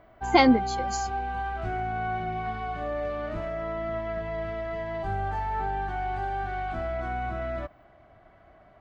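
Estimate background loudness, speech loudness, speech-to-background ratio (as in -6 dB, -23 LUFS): -31.5 LUFS, -21.5 LUFS, 10.0 dB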